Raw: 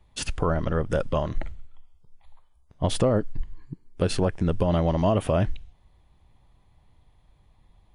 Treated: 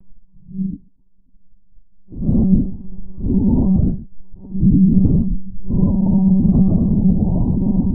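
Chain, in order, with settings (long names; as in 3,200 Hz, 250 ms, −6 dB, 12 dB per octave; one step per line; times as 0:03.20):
elliptic low-pass filter 910 Hz, stop band 60 dB
low shelf with overshoot 340 Hz +12 dB, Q 3
extreme stretch with random phases 5.8×, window 0.05 s, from 0:03.62
one-pitch LPC vocoder at 8 kHz 190 Hz
level that may rise only so fast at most 470 dB per second
level −4 dB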